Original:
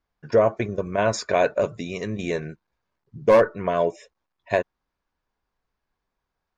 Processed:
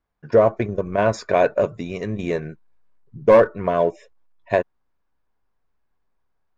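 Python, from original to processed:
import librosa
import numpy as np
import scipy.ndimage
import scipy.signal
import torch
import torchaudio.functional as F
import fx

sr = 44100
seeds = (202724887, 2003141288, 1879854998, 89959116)

p1 = fx.high_shelf(x, sr, hz=3200.0, db=-9.5)
p2 = fx.backlash(p1, sr, play_db=-22.5)
p3 = p1 + (p2 * 10.0 ** (-11.5 / 20.0))
y = p3 * 10.0 ** (1.5 / 20.0)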